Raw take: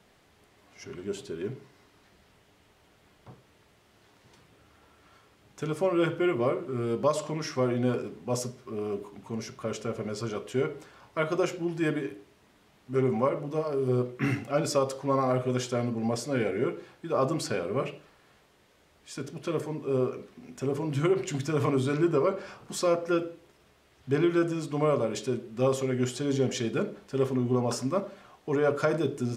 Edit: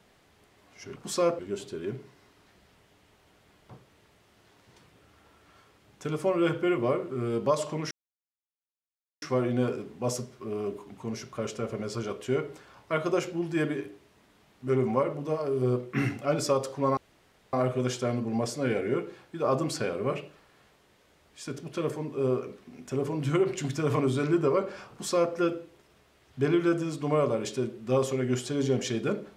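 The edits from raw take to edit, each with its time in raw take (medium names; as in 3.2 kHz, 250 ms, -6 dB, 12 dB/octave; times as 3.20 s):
7.48 s: insert silence 1.31 s
15.23 s: insert room tone 0.56 s
22.61–23.04 s: copy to 0.96 s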